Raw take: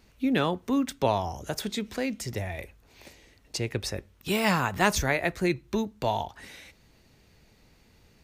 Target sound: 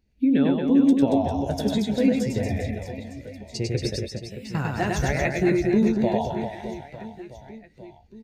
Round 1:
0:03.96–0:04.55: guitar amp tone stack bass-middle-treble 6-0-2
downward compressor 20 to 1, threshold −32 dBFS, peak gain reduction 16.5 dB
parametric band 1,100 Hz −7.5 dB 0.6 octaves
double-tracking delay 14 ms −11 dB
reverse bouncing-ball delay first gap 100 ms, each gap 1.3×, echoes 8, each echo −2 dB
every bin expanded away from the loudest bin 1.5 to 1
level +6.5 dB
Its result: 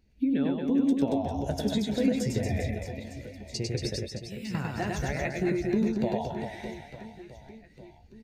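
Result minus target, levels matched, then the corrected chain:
downward compressor: peak gain reduction +7 dB
0:03.96–0:04.55: guitar amp tone stack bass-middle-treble 6-0-2
downward compressor 20 to 1, threshold −24.5 dBFS, peak gain reduction 9.5 dB
parametric band 1,100 Hz −7.5 dB 0.6 octaves
double-tracking delay 14 ms −11 dB
reverse bouncing-ball delay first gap 100 ms, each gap 1.3×, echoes 8, each echo −2 dB
every bin expanded away from the loudest bin 1.5 to 1
level +6.5 dB

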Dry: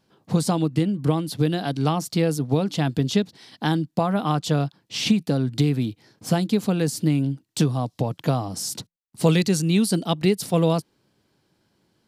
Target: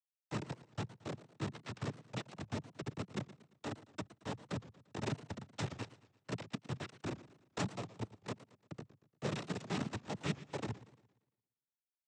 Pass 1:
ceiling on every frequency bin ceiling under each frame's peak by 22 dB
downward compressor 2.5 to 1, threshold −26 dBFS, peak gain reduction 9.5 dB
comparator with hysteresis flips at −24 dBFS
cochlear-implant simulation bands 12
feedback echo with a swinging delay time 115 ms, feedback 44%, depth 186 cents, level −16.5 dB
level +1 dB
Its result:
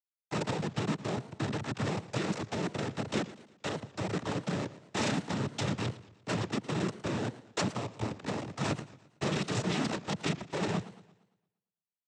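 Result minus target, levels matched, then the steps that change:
downward compressor: peak gain reduction −4.5 dB
change: downward compressor 2.5 to 1, threshold −33.5 dBFS, peak gain reduction 14 dB

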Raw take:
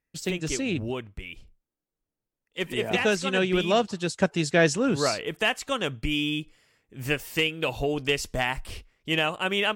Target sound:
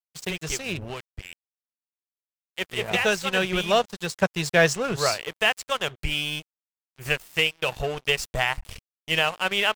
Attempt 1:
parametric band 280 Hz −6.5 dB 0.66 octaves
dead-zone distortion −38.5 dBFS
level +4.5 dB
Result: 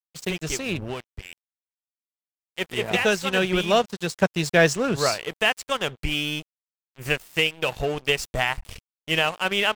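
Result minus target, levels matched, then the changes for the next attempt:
250 Hz band +3.5 dB
change: parametric band 280 Hz −15 dB 0.66 octaves

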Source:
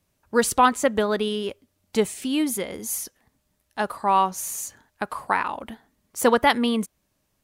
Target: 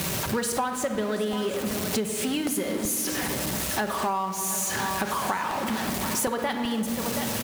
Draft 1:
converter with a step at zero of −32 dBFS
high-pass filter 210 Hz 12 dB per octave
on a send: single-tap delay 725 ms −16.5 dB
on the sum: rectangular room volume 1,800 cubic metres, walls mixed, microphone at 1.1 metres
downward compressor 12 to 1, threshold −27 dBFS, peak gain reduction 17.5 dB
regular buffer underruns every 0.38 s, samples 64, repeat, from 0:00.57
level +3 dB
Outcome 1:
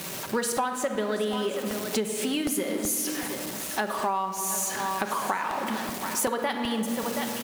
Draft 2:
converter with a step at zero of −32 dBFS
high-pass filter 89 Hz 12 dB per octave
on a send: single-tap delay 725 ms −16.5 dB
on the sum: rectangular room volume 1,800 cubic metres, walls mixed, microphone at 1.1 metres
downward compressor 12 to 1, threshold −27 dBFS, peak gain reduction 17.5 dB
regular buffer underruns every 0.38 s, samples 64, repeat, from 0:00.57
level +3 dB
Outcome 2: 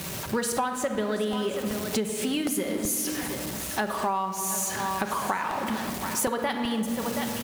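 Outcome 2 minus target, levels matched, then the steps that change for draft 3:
converter with a step at zero: distortion −6 dB
change: converter with a step at zero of −25 dBFS

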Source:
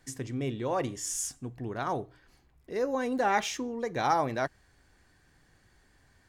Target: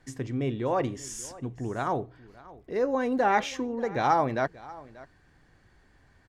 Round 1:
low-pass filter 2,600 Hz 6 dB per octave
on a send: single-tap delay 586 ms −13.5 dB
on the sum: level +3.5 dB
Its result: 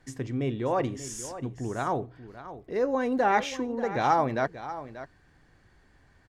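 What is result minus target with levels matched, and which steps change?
echo-to-direct +6.5 dB
change: single-tap delay 586 ms −20 dB

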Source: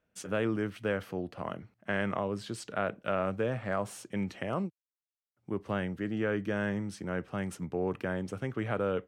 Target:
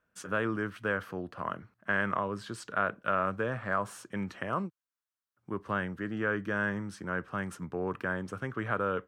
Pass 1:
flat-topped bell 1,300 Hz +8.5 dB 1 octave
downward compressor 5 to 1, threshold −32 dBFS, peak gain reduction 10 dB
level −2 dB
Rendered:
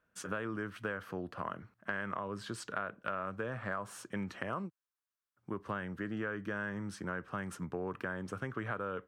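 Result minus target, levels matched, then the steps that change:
downward compressor: peak gain reduction +10 dB
remove: downward compressor 5 to 1, threshold −32 dBFS, peak gain reduction 10 dB

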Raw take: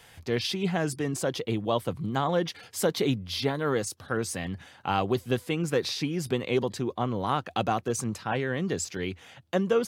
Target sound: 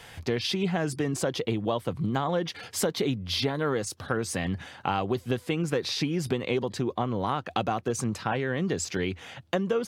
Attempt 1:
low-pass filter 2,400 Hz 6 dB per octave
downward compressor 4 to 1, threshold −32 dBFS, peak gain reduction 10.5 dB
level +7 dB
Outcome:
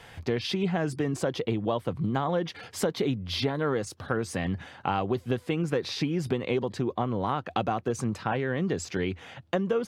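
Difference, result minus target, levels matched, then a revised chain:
8,000 Hz band −5.5 dB
low-pass filter 6,400 Hz 6 dB per octave
downward compressor 4 to 1, threshold −32 dBFS, peak gain reduction 10.5 dB
level +7 dB

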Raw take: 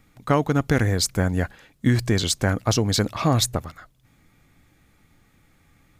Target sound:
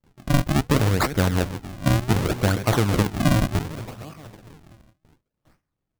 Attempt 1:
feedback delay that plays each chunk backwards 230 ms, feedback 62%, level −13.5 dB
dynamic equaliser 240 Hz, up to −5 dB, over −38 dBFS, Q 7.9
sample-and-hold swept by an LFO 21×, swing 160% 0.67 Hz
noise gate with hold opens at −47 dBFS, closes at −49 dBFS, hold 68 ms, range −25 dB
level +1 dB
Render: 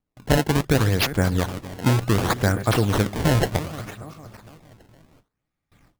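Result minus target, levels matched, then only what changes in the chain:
sample-and-hold swept by an LFO: distortion −6 dB
change: sample-and-hold swept by an LFO 57×, swing 160% 0.67 Hz

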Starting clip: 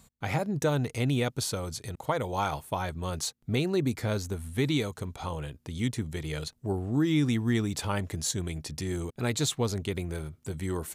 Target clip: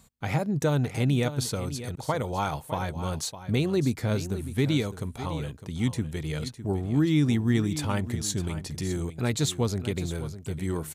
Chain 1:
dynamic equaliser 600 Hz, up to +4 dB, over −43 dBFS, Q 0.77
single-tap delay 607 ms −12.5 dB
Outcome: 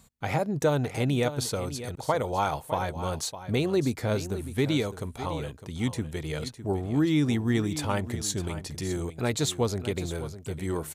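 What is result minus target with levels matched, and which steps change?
500 Hz band +3.0 dB
change: dynamic equaliser 160 Hz, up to +4 dB, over −43 dBFS, Q 0.77

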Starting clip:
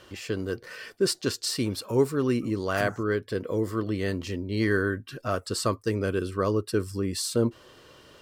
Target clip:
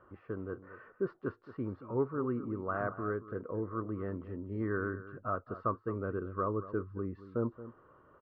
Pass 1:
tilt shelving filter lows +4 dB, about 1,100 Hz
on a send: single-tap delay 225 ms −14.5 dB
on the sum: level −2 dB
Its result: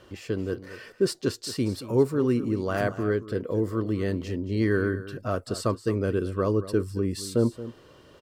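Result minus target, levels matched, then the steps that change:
1,000 Hz band −7.5 dB
add first: transistor ladder low-pass 1,400 Hz, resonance 65%

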